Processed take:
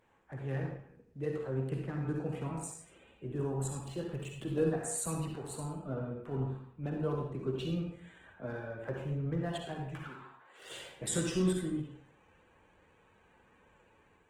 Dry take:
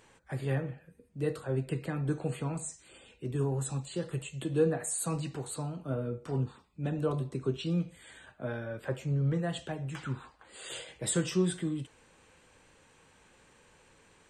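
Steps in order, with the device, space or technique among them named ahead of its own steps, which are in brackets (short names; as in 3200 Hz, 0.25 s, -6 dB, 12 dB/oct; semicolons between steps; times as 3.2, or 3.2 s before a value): Wiener smoothing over 9 samples; 9.98–10.59 weighting filter A; low shelf 87 Hz -3.5 dB; speakerphone in a meeting room (reverb RT60 0.60 s, pre-delay 47 ms, DRR 1 dB; AGC gain up to 3 dB; gain -7 dB; Opus 16 kbps 48000 Hz)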